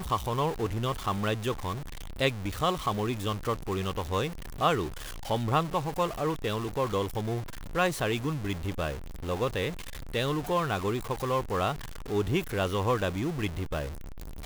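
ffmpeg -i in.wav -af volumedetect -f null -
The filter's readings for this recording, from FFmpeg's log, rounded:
mean_volume: -30.2 dB
max_volume: -10.5 dB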